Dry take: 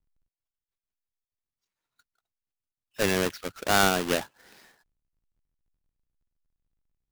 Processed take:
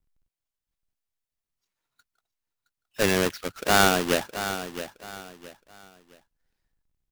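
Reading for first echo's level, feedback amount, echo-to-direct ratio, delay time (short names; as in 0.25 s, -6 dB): -11.0 dB, 30%, -10.5 dB, 0.667 s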